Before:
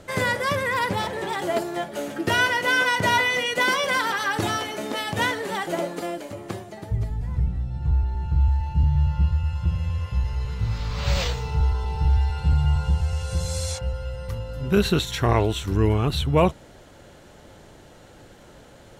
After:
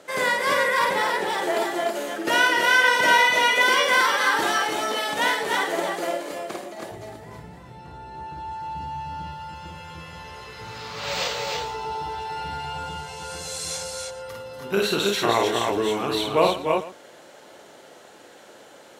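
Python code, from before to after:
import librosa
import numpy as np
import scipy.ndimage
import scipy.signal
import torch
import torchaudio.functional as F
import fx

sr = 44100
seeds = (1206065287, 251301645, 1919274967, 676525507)

y = scipy.signal.sosfilt(scipy.signal.butter(2, 360.0, 'highpass', fs=sr, output='sos'), x)
y = fx.echo_multitap(y, sr, ms=(51, 104, 167, 297, 322, 439), db=(-3.0, -14.0, -17.5, -6.5, -4.0, -18.5))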